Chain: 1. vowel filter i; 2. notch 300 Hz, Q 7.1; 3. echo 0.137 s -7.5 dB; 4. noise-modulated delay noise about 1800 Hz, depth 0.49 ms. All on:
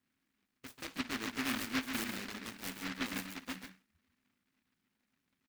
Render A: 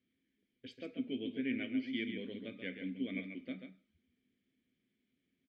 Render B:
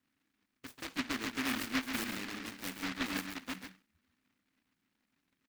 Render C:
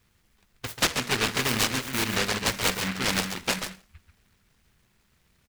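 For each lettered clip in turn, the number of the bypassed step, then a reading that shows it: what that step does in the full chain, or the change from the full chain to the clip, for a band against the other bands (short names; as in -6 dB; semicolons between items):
4, 4 kHz band -8.0 dB; 2, loudness change +1.5 LU; 1, 250 Hz band -9.0 dB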